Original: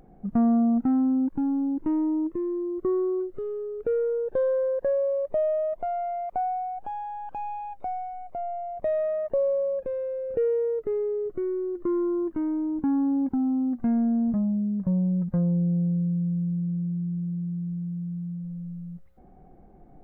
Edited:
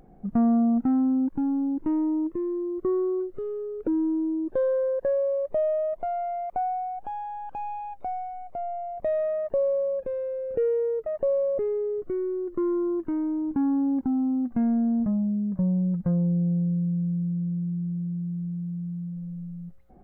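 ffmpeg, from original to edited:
-filter_complex "[0:a]asplit=5[a][b][c][d][e];[a]atrim=end=3.874[f];[b]atrim=start=3.87:end=4.3,asetpts=PTS-STARTPTS,asetrate=29988,aresample=44100[g];[c]atrim=start=4.296:end=10.862[h];[d]atrim=start=9.168:end=9.692[i];[e]atrim=start=10.858[j];[f][g]acrossfade=d=0.004:c1=hsin:c2=hsin[k];[k][h]acrossfade=d=0.004:c1=hsin:c2=hsin[l];[l][i]acrossfade=d=0.004:c1=hsin:c2=hsin[m];[m][j]acrossfade=d=0.004:c1=hsin:c2=hsin"

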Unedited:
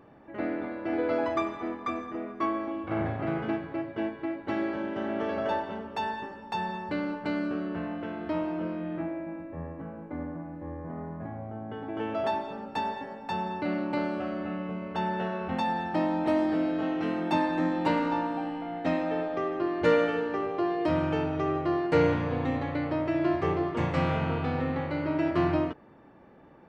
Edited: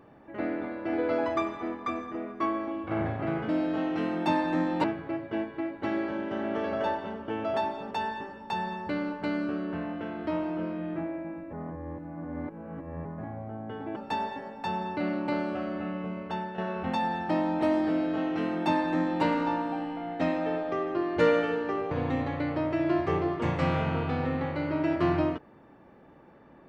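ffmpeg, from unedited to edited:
-filter_complex "[0:a]asplit=10[a][b][c][d][e][f][g][h][i][j];[a]atrim=end=3.492[k];[b]atrim=start=16.538:end=17.892[l];[c]atrim=start=3.488:end=5.932[m];[d]atrim=start=11.978:end=12.612[n];[e]atrim=start=5.928:end=9.552[o];[f]atrim=start=9.548:end=11.072,asetpts=PTS-STARTPTS,areverse[p];[g]atrim=start=11.068:end=11.982[q];[h]atrim=start=12.608:end=15.23,asetpts=PTS-STARTPTS,afade=t=out:st=2.212:d=0.41:silence=0.316228[r];[i]atrim=start=15.23:end=20.562,asetpts=PTS-STARTPTS,afade=t=in:d=0.004:c=hsin:silence=0.316228[s];[j]atrim=start=22.258[t];[k][l]acrossfade=d=0.004:c1=hsin:c2=hsin[u];[u][m]acrossfade=d=0.004:c1=hsin:c2=hsin[v];[v][n]acrossfade=d=0.004:c1=hsin:c2=hsin[w];[w][o]acrossfade=d=0.004:c1=hsin:c2=hsin[x];[x][p]acrossfade=d=0.004:c1=hsin:c2=hsin[y];[y][q]acrossfade=d=0.004:c1=hsin:c2=hsin[z];[r][s]concat=n=2:v=0:a=1[aa];[z][aa]acrossfade=d=0.004:c1=hsin:c2=hsin[ab];[ab][t]acrossfade=d=0.004:c1=hsin:c2=hsin"

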